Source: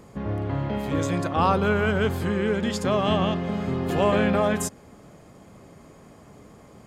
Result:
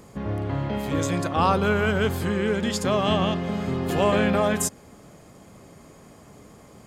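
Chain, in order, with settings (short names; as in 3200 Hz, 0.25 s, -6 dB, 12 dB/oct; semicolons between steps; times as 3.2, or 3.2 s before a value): high shelf 3900 Hz +6 dB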